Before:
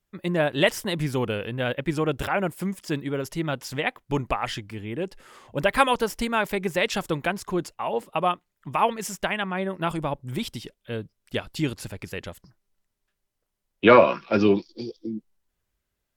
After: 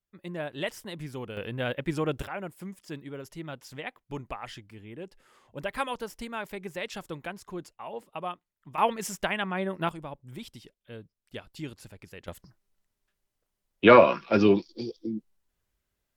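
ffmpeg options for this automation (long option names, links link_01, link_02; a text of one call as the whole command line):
ffmpeg -i in.wav -af "asetnsamples=nb_out_samples=441:pad=0,asendcmd='1.37 volume volume -4dB;2.22 volume volume -11.5dB;8.78 volume volume -2.5dB;9.89 volume volume -12dB;12.28 volume volume -1dB',volume=-12dB" out.wav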